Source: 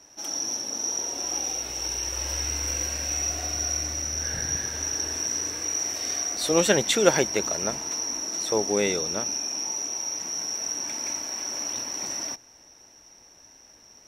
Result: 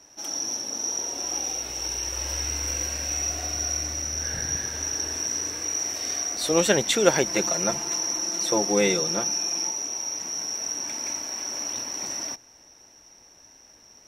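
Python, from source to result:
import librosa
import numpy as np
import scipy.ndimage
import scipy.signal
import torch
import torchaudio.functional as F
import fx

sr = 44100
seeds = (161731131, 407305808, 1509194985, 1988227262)

y = fx.comb(x, sr, ms=5.8, depth=0.96, at=(7.26, 9.7))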